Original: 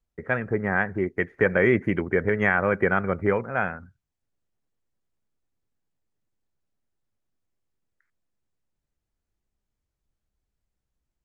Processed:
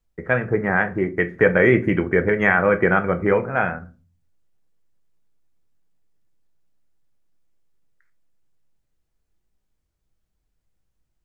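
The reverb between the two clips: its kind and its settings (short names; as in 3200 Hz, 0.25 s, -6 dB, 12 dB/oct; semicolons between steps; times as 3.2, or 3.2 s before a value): shoebox room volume 160 m³, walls furnished, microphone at 0.61 m; gain +4 dB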